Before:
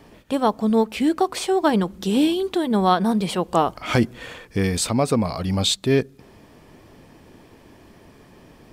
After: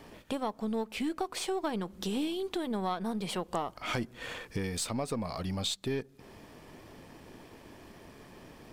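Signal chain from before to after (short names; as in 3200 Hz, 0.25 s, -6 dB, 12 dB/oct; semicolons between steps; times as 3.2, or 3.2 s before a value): half-wave gain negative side -3 dB; low shelf 350 Hz -3.5 dB; compressor 3:1, threshold -34 dBFS, peak gain reduction 14.5 dB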